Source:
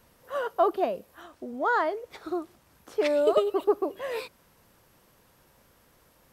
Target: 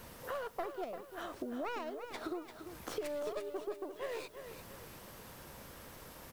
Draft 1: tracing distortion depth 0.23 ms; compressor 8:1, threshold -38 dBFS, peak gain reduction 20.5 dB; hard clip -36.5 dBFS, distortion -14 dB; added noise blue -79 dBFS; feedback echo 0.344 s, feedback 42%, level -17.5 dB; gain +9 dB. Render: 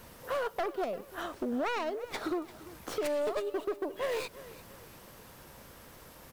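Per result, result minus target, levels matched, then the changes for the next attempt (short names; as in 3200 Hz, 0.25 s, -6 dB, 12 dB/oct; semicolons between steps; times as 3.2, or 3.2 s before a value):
compressor: peak gain reduction -9 dB; echo-to-direct -8 dB
change: compressor 8:1, threshold -48 dBFS, peak gain reduction 29.5 dB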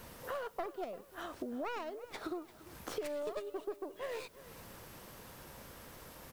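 echo-to-direct -8 dB
change: feedback echo 0.344 s, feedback 42%, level -9.5 dB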